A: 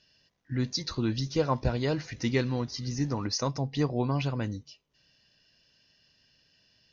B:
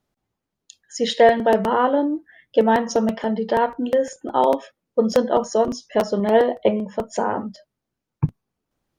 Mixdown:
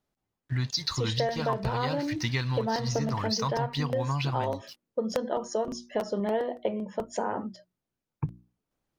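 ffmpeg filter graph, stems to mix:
-filter_complex "[0:a]equalizer=f=125:t=o:w=1:g=8,equalizer=f=250:t=o:w=1:g=-5,equalizer=f=500:t=o:w=1:g=-7,equalizer=f=1000:t=o:w=1:g=10,equalizer=f=2000:t=o:w=1:g=4,equalizer=f=4000:t=o:w=1:g=9,aeval=exprs='sgn(val(0))*max(abs(val(0))-0.00376,0)':c=same,volume=1[s0];[1:a]bandreject=f=60:t=h:w=6,bandreject=f=120:t=h:w=6,bandreject=f=180:t=h:w=6,bandreject=f=240:t=h:w=6,bandreject=f=300:t=h:w=6,bandreject=f=360:t=h:w=6,volume=0.531[s1];[s0][s1]amix=inputs=2:normalize=0,acompressor=threshold=0.0562:ratio=6"

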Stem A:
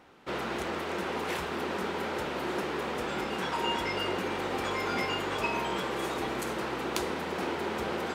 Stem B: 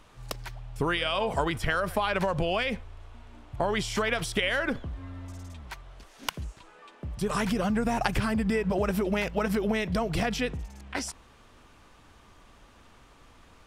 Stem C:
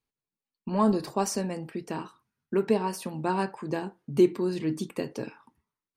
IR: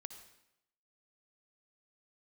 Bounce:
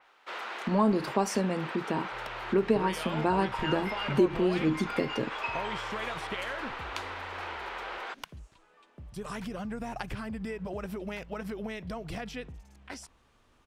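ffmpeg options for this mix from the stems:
-filter_complex "[0:a]highpass=880,highshelf=f=7600:g=-10,volume=1[s0];[1:a]adelay=1950,volume=0.316[s1];[2:a]acompressor=threshold=0.0562:ratio=2.5,volume=1.41,asplit=2[s2][s3];[s3]apad=whole_len=359320[s4];[s0][s4]sidechaincompress=threshold=0.0398:ratio=8:attack=6.2:release=243[s5];[s5][s1][s2]amix=inputs=3:normalize=0,adynamicequalizer=threshold=0.00224:dfrequency=4600:dqfactor=0.7:tfrequency=4600:tqfactor=0.7:attack=5:release=100:ratio=0.375:range=4:mode=cutabove:tftype=highshelf"

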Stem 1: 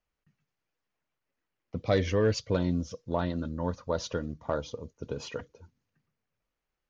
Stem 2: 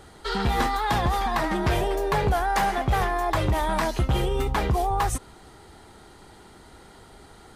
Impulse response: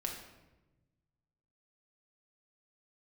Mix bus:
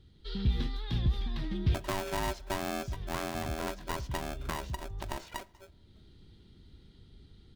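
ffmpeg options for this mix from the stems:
-filter_complex "[0:a]acrossover=split=460|2000[s0][s1][s2];[s0]acompressor=threshold=0.0355:ratio=4[s3];[s1]acompressor=threshold=0.0141:ratio=4[s4];[s2]acompressor=threshold=0.00224:ratio=4[s5];[s3][s4][s5]amix=inputs=3:normalize=0,aeval=exprs='val(0)*sgn(sin(2*PI*480*n/s))':c=same,volume=0.668,asplit=3[s6][s7][s8];[s7]volume=0.119[s9];[1:a]firequalizer=gain_entry='entry(110,0);entry(730,-28);entry(3500,-5);entry(7300,-25)':delay=0.05:min_phase=1,dynaudnorm=f=180:g=3:m=1.68,volume=0.501[s10];[s8]apad=whole_len=337798[s11];[s10][s11]sidechaincompress=threshold=0.00398:ratio=4:attack=5.7:release=562[s12];[2:a]atrim=start_sample=2205[s13];[s9][s13]afir=irnorm=-1:irlink=0[s14];[s6][s12][s14]amix=inputs=3:normalize=0"

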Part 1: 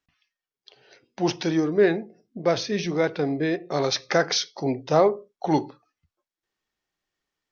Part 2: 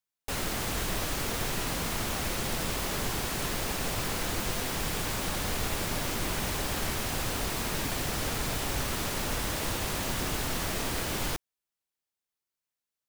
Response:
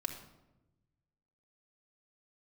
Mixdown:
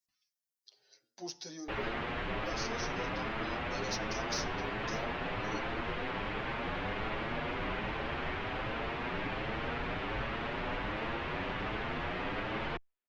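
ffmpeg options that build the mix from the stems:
-filter_complex "[0:a]aexciter=amount=5.4:drive=6.8:freq=4100,bandreject=f=108.6:t=h:w=4,bandreject=f=217.2:t=h:w=4,bandreject=f=325.8:t=h:w=4,bandreject=f=434.4:t=h:w=4,bandreject=f=543:t=h:w=4,bandreject=f=651.6:t=h:w=4,bandreject=f=760.2:t=h:w=4,bandreject=f=868.8:t=h:w=4,bandreject=f=977.4:t=h:w=4,bandreject=f=1086:t=h:w=4,bandreject=f=1194.6:t=h:w=4,bandreject=f=1303.2:t=h:w=4,bandreject=f=1411.8:t=h:w=4,bandreject=f=1520.4:t=h:w=4,bandreject=f=1629:t=h:w=4,bandreject=f=1737.6:t=h:w=4,bandreject=f=1846.2:t=h:w=4,bandreject=f=1954.8:t=h:w=4,acompressor=threshold=0.0631:ratio=2.5,volume=0.178,asplit=2[s0][s1];[s1]volume=0.141[s2];[1:a]lowpass=f=2800:w=0.5412,lowpass=f=2800:w=1.3066,adelay=1400,volume=1.26[s3];[2:a]atrim=start_sample=2205[s4];[s2][s4]afir=irnorm=-1:irlink=0[s5];[s0][s3][s5]amix=inputs=3:normalize=0,lowshelf=f=190:g=-7.5,asplit=2[s6][s7];[s7]adelay=7.6,afreqshift=1.3[s8];[s6][s8]amix=inputs=2:normalize=1"

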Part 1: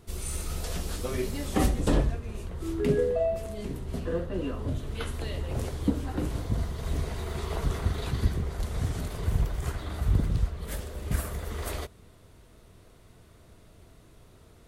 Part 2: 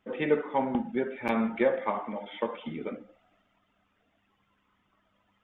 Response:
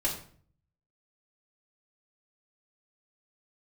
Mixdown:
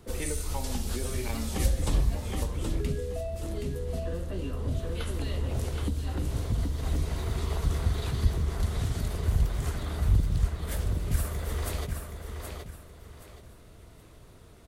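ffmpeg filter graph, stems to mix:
-filter_complex "[0:a]volume=1.12,asplit=2[s0][s1];[s1]volume=0.447[s2];[1:a]volume=0.75[s3];[s2]aecho=0:1:773|1546|2319|3092:1|0.3|0.09|0.027[s4];[s0][s3][s4]amix=inputs=3:normalize=0,acrossover=split=130|3000[s5][s6][s7];[s6]acompressor=threshold=0.0178:ratio=6[s8];[s5][s8][s7]amix=inputs=3:normalize=0"

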